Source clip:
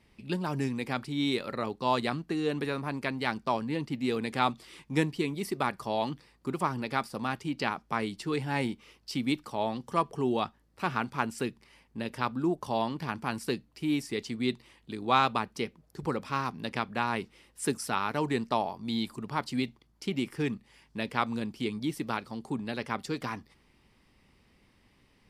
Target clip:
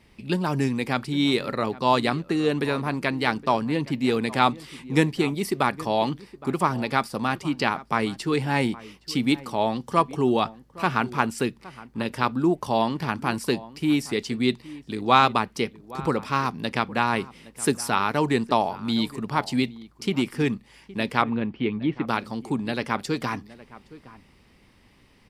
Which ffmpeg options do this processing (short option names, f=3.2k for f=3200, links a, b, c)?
-filter_complex "[0:a]asplit=3[a][b][c];[a]afade=t=out:st=21.21:d=0.02[d];[b]lowpass=f=2.8k:w=0.5412,lowpass=f=2.8k:w=1.3066,afade=t=in:st=21.21:d=0.02,afade=t=out:st=22.07:d=0.02[e];[c]afade=t=in:st=22.07:d=0.02[f];[d][e][f]amix=inputs=3:normalize=0,asplit=2[g][h];[h]adelay=816.3,volume=-18dB,highshelf=f=4k:g=-18.4[i];[g][i]amix=inputs=2:normalize=0,volume=7dB"